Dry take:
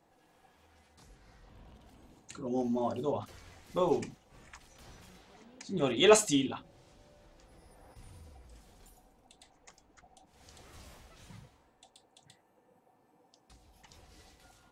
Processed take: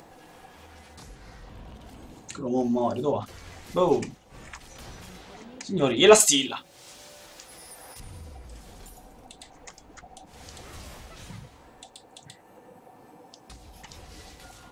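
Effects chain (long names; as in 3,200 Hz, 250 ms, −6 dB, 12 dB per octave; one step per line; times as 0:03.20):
0:06.20–0:08.00: spectral tilt +3.5 dB per octave
in parallel at −2.5 dB: upward compression, threshold −38 dBFS
on the sum: level +2 dB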